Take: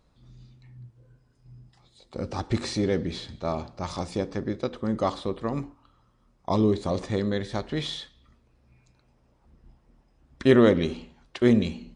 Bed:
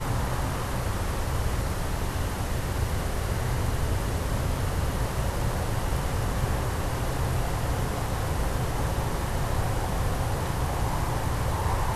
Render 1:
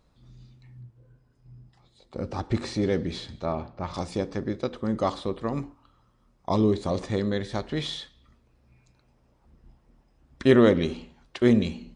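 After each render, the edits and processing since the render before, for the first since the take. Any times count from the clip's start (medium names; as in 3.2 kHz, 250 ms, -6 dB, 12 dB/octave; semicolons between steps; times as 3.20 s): 0.81–2.82 s: treble shelf 3.2 kHz -6.5 dB; 3.45–3.94 s: low-pass 2.7 kHz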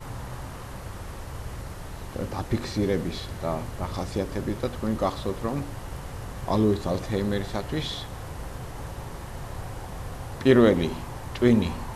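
add bed -9 dB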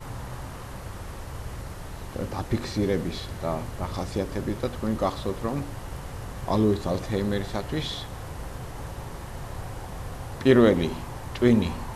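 no audible change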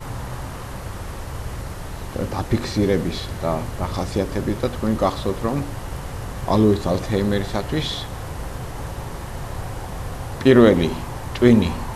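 trim +6 dB; peak limiter -2 dBFS, peak gain reduction 2 dB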